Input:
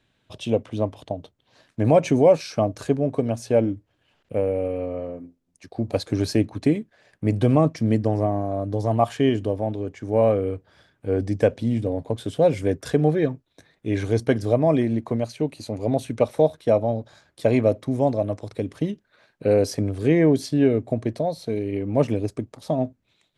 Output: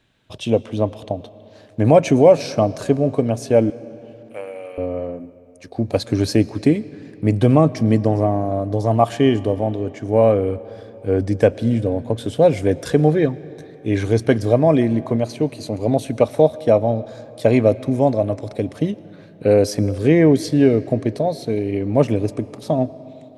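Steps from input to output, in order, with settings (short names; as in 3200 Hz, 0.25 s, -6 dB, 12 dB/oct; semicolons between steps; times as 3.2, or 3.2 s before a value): 3.7–4.78 HPF 1100 Hz 12 dB/oct; reverb RT60 3.4 s, pre-delay 75 ms, DRR 18 dB; gain +4.5 dB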